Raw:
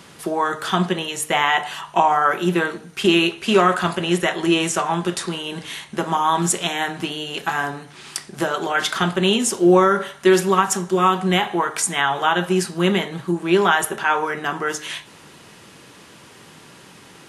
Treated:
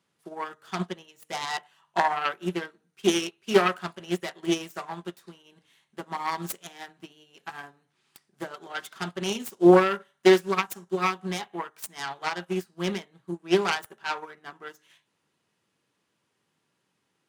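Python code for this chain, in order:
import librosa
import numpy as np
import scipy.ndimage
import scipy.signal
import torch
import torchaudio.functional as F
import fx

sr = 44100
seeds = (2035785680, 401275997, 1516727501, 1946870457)

y = fx.self_delay(x, sr, depth_ms=0.22)
y = scipy.signal.sosfilt(scipy.signal.butter(2, 74.0, 'highpass', fs=sr, output='sos'), y)
y = fx.upward_expand(y, sr, threshold_db=-31.0, expansion=2.5)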